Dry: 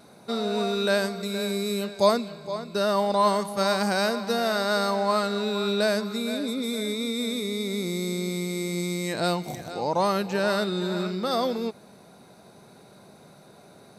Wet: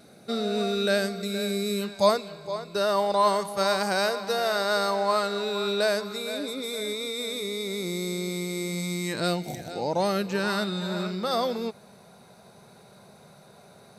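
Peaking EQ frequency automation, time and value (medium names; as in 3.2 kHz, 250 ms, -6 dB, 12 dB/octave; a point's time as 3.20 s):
peaking EQ -14.5 dB 0.31 oct
1.72 s 970 Hz
2.17 s 230 Hz
8.61 s 230 Hz
9.40 s 1.1 kHz
10.07 s 1.1 kHz
10.95 s 300 Hz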